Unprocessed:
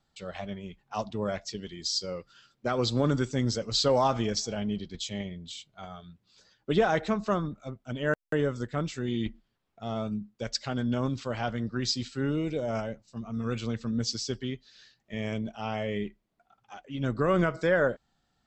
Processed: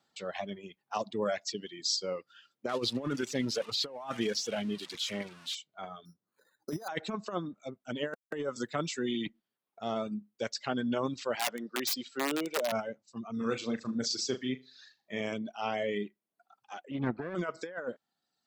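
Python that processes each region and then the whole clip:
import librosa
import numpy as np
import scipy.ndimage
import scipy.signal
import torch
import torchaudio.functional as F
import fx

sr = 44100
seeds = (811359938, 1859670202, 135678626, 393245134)

y = fx.chain(x, sr, fx.crossing_spikes(level_db=-22.5),
    fx.lowpass(hz=3600.0, slope=12), at=(2.69, 5.55))
y = fx.chain(y, sr, fx.lowpass(hz=1700.0, slope=24),
    fx.resample_bad(factor=8, down='filtered', up='hold'), at=(6.05, 6.88))
y = fx.chain(y, sr, fx.highpass(hz=60.0, slope=12),
    fx.high_shelf(hz=4700.0, db=5.5),
    fx.band_squash(depth_pct=40), at=(8.56, 9.27))
y = fx.chain(y, sr, fx.highpass(hz=280.0, slope=12),
    fx.overflow_wrap(gain_db=25.0), at=(11.35, 12.72))
y = fx.chain(y, sr, fx.notch(hz=2900.0, q=9.6),
    fx.room_flutter(wall_m=6.7, rt60_s=0.35), at=(13.37, 15.21))
y = fx.chain(y, sr, fx.lower_of_two(delay_ms=0.49),
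    fx.lowpass(hz=2100.0, slope=12),
    fx.low_shelf(hz=130.0, db=6.5), at=(16.91, 17.35))
y = scipy.signal.sosfilt(scipy.signal.butter(2, 240.0, 'highpass', fs=sr, output='sos'), y)
y = fx.dereverb_blind(y, sr, rt60_s=1.1)
y = fx.over_compress(y, sr, threshold_db=-31.0, ratio=-0.5)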